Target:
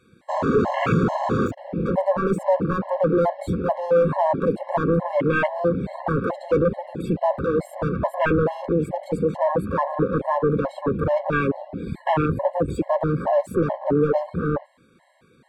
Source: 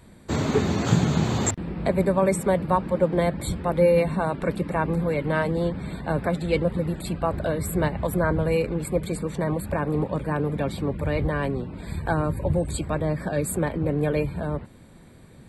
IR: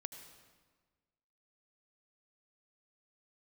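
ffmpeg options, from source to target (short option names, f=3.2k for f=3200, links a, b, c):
-filter_complex "[0:a]asplit=2[a][b];[b]highpass=f=720:p=1,volume=30dB,asoftclip=type=tanh:threshold=-4dB[c];[a][c]amix=inputs=2:normalize=0,lowpass=f=2.3k:p=1,volume=-6dB,afwtdn=0.158,afftfilt=real='re*gt(sin(2*PI*2.3*pts/sr)*(1-2*mod(floor(b*sr/1024/550),2)),0)':imag='im*gt(sin(2*PI*2.3*pts/sr)*(1-2*mod(floor(b*sr/1024/550),2)),0)':win_size=1024:overlap=0.75,volume=-4dB"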